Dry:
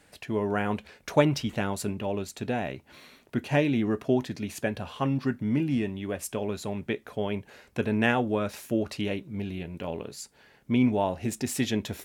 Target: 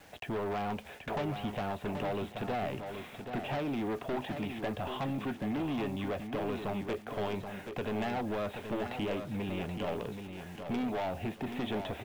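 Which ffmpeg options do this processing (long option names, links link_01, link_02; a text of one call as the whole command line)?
ffmpeg -i in.wav -filter_complex "[0:a]equalizer=frequency=750:width_type=o:width=0.58:gain=7.5,acrossover=split=360|1100|3100[link_01][link_02][link_03][link_04];[link_01]acompressor=threshold=-35dB:ratio=4[link_05];[link_02]acompressor=threshold=-32dB:ratio=4[link_06];[link_03]acompressor=threshold=-47dB:ratio=4[link_07];[link_04]acompressor=threshold=-47dB:ratio=4[link_08];[link_05][link_06][link_07][link_08]amix=inputs=4:normalize=0,aresample=8000,volume=30.5dB,asoftclip=hard,volume=-30.5dB,aresample=44100,acrusher=bits=9:mix=0:aa=0.000001,aeval=exprs='0.0473*sin(PI/2*1.41*val(0)/0.0473)':channel_layout=same,asplit=2[link_09][link_10];[link_10]aecho=0:1:779|1558|2337:0.422|0.114|0.0307[link_11];[link_09][link_11]amix=inputs=2:normalize=0,volume=-4.5dB" out.wav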